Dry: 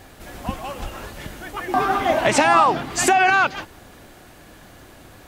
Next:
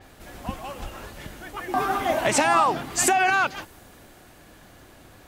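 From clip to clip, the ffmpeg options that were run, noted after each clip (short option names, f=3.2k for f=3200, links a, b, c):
-af "adynamicequalizer=threshold=0.0112:dfrequency=6500:dqfactor=0.7:tfrequency=6500:tqfactor=0.7:attack=5:release=100:ratio=0.375:range=4:mode=boostabove:tftype=highshelf,volume=-4.5dB"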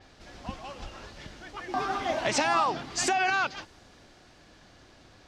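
-af "lowpass=f=5.2k:t=q:w=2.1,volume=-6dB"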